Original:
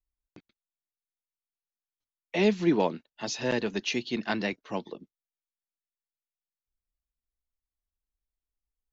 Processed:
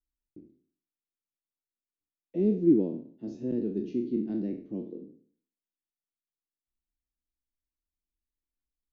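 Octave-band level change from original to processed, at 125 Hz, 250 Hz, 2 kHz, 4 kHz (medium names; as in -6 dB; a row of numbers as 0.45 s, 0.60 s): -0.5 dB, +2.5 dB, under -30 dB, under -25 dB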